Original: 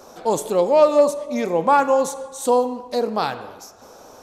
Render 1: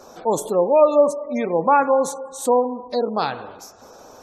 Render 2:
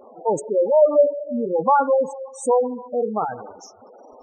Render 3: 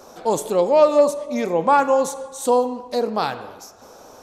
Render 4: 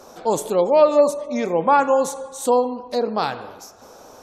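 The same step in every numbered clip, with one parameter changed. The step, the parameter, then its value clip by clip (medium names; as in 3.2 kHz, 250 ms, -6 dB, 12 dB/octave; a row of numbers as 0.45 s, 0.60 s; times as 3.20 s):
spectral gate, under each frame's peak: -30 dB, -10 dB, -60 dB, -45 dB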